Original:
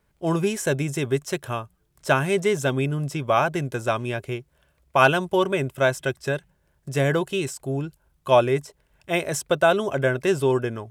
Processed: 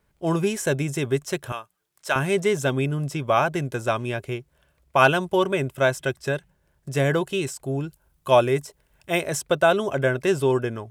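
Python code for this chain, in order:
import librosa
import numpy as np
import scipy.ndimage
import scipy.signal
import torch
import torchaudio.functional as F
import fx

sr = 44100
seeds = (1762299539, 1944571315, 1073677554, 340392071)

y = fx.highpass(x, sr, hz=1100.0, slope=6, at=(1.52, 2.16))
y = fx.high_shelf(y, sr, hz=7800.0, db=6.5, at=(7.81, 9.21))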